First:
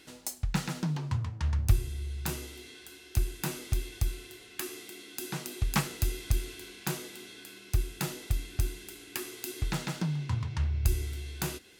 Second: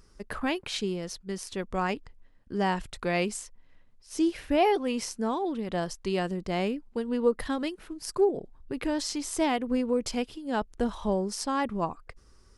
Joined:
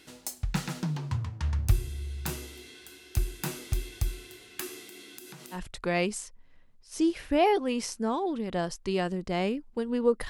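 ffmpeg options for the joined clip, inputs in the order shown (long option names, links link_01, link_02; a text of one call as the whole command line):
ffmpeg -i cue0.wav -i cue1.wav -filter_complex "[0:a]asettb=1/sr,asplit=3[link_01][link_02][link_03];[link_01]atrim=end=4.874[link_04];[link_02]atrim=start=4.87:end=5.61,asetpts=PTS-STARTPTS,afade=type=in:duration=0.004:curve=qsin,afade=type=out:start_time=0.736:duration=0.004:curve=qsin,acompressor=threshold=-42dB:ratio=16:attack=3.2:release=140:knee=1:detection=peak[link_05];[link_03]atrim=start=5.606[link_06];[link_04][link_05]acrossfade=duration=0.004:curve1=hsin:curve2=qsin[link_07];[link_07][link_06]acrossfade=duration=0.004:curve1=qsin:curve2=hsin,apad=whole_dur=10.29,atrim=end=10.29,atrim=end=5.61,asetpts=PTS-STARTPTS[link_08];[1:a]atrim=start=2.7:end=7.48,asetpts=PTS-STARTPTS[link_09];[link_08][link_09]acrossfade=duration=0.1:curve1=tri:curve2=tri" out.wav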